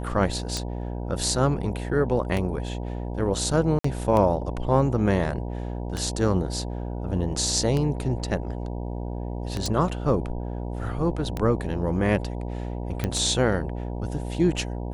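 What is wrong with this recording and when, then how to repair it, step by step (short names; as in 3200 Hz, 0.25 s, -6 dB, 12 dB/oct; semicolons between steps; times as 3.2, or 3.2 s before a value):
buzz 60 Hz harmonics 16 -31 dBFS
tick 33 1/3 rpm -14 dBFS
3.79–3.84 gap 54 ms
9.66 pop
13.04 pop -12 dBFS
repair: de-click; de-hum 60 Hz, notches 16; interpolate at 3.79, 54 ms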